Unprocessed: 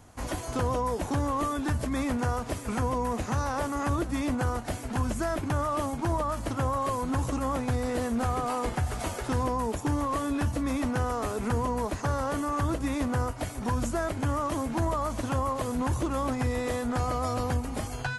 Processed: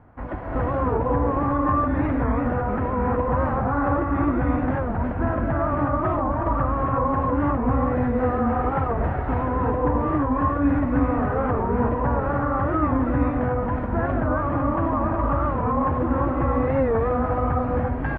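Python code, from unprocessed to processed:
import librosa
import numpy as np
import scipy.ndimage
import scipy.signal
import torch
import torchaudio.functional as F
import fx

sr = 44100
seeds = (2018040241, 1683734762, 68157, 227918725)

y = scipy.signal.sosfilt(scipy.signal.butter(4, 1800.0, 'lowpass', fs=sr, output='sos'), x)
y = fx.rev_gated(y, sr, seeds[0], gate_ms=390, shape='rising', drr_db=-3.5)
y = fx.record_warp(y, sr, rpm=45.0, depth_cents=160.0)
y = y * 10.0 ** (2.0 / 20.0)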